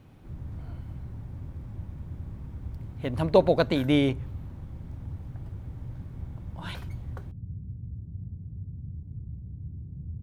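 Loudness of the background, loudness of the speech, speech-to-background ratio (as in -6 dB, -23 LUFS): -40.5 LUFS, -25.5 LUFS, 15.0 dB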